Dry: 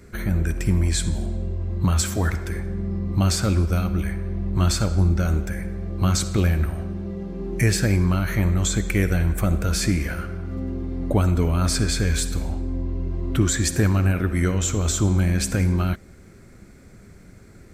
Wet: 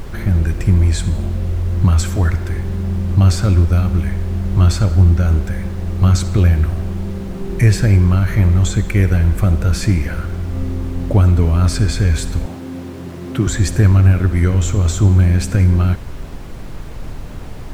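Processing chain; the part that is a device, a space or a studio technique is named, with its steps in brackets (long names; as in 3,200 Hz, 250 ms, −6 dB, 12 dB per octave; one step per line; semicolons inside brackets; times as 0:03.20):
car interior (parametric band 100 Hz +8 dB 0.86 octaves; high-shelf EQ 4,700 Hz −6 dB; brown noise bed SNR 12 dB)
0:12.46–0:13.47: high-pass filter 130 Hz 24 dB per octave
level +2.5 dB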